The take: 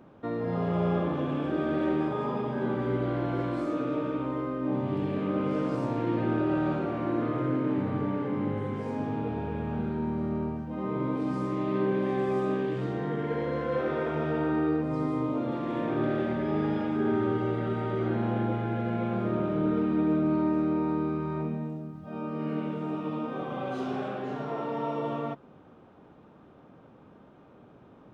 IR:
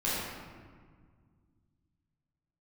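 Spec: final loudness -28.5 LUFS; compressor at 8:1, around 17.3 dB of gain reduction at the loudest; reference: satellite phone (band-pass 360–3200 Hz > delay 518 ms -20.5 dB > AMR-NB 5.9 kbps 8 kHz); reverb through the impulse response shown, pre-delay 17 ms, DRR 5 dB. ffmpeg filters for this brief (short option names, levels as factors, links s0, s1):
-filter_complex "[0:a]acompressor=threshold=0.00794:ratio=8,asplit=2[s0][s1];[1:a]atrim=start_sample=2205,adelay=17[s2];[s1][s2]afir=irnorm=-1:irlink=0,volume=0.2[s3];[s0][s3]amix=inputs=2:normalize=0,highpass=360,lowpass=3200,aecho=1:1:518:0.0944,volume=8.91" -ar 8000 -c:a libopencore_amrnb -b:a 5900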